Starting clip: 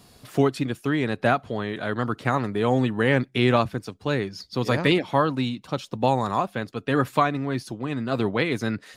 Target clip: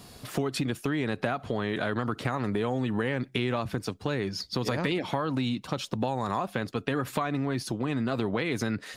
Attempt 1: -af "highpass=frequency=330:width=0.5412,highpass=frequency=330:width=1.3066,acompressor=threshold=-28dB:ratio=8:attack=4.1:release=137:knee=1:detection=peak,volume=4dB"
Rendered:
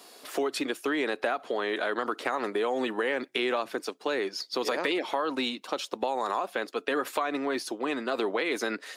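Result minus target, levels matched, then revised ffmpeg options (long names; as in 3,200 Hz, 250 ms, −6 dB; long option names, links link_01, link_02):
250 Hz band −4.0 dB
-af "acompressor=threshold=-28dB:ratio=8:attack=4.1:release=137:knee=1:detection=peak,volume=4dB"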